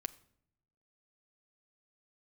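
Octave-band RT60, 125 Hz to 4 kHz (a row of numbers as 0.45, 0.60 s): 1.2, 1.0, 0.75, 0.60, 0.55, 0.50 s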